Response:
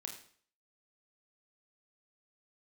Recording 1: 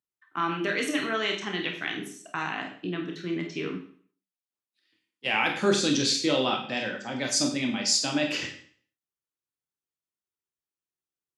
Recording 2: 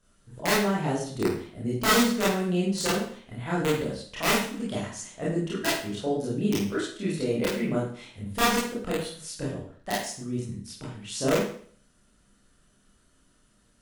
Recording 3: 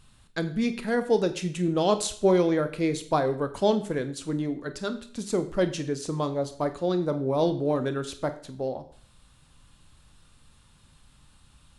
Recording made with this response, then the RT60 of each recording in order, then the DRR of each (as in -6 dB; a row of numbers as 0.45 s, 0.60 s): 1; 0.50 s, 0.50 s, 0.50 s; 2.0 dB, -7.5 dB, 9.5 dB